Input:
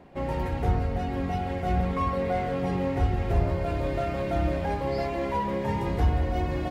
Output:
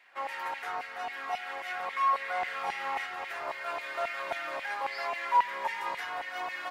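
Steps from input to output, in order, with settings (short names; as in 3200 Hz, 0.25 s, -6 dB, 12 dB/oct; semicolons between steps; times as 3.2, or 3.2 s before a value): notches 60/120/180 Hz; 2.4–3.06 flutter echo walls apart 6.5 m, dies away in 0.47 s; LFO high-pass saw down 3.7 Hz 900–2200 Hz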